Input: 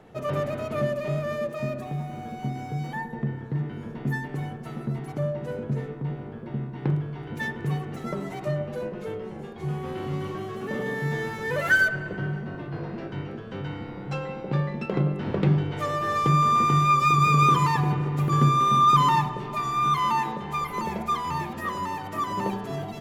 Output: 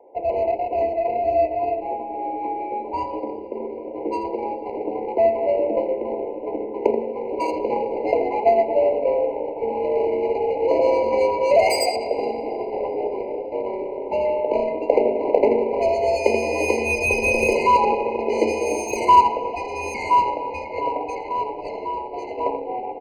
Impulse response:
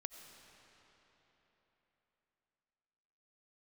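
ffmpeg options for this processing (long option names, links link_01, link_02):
-filter_complex "[0:a]aecho=1:1:82:0.376,dynaudnorm=framelen=250:gausssize=31:maxgain=7dB,highpass=frequency=320:width_type=q:width=0.5412,highpass=frequency=320:width_type=q:width=1.307,lowpass=frequency=2500:width_type=q:width=0.5176,lowpass=frequency=2500:width_type=q:width=0.7071,lowpass=frequency=2500:width_type=q:width=1.932,afreqshift=81,adynamicsmooth=sensitivity=1.5:basefreq=710,asettb=1/sr,asplit=3[link_01][link_02][link_03];[link_01]atrim=end=1.194[link_04];[link_02]atrim=start=1.19:end=3.2,asetpts=PTS-STARTPTS,afade=type=in:duration=0.004:curve=qsin,afade=type=out:start_time=2.006:duration=0.004:curve=qsin,asplit=2[link_05][link_06];[link_06]adelay=16,volume=-3.5dB[link_07];[link_05][link_07]amix=inputs=2:normalize=0,atrim=end_sample=88641[link_08];[link_03]atrim=start=3.196[link_09];[link_04][link_08]acrossfade=duration=0.004:curve1=hsin:curve2=qsin[link_10];[link_10][link_09]acrossfade=duration=0.004:curve1=qsin:curve2=hsin,asplit=2[link_11][link_12];[1:a]atrim=start_sample=2205,lowpass=3000[link_13];[link_12][link_13]afir=irnorm=-1:irlink=0,volume=2.5dB[link_14];[link_11][link_14]amix=inputs=2:normalize=0,afftfilt=real='re*eq(mod(floor(b*sr/1024/1000),2),0)':imag='im*eq(mod(floor(b*sr/1024/1000),2),0)':win_size=1024:overlap=0.75,volume=4dB"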